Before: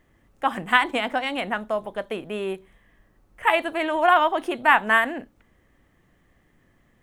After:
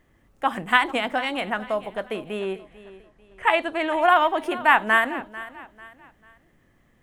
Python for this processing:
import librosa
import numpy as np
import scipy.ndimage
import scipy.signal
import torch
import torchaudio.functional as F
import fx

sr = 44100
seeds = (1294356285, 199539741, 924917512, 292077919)

y = fx.lowpass(x, sr, hz=8000.0, slope=12, at=(2.39, 3.89))
y = fx.echo_feedback(y, sr, ms=444, feedback_pct=35, wet_db=-17)